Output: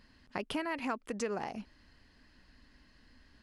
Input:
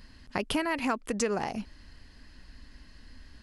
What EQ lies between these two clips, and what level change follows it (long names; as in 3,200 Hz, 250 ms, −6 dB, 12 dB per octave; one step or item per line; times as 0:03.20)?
low-shelf EQ 96 Hz −9.5 dB
high-shelf EQ 5,500 Hz −8 dB
−5.5 dB